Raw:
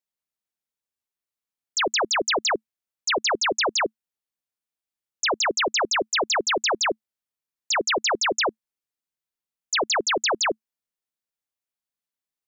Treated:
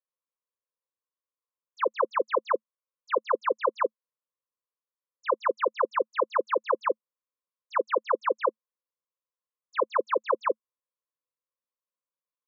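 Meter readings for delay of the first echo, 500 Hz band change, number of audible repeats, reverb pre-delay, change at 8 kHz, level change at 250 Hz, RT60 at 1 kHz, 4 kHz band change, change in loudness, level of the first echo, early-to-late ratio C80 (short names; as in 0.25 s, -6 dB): none, 0.0 dB, none, none, under -40 dB, -8.5 dB, none, -24.0 dB, -5.5 dB, none, none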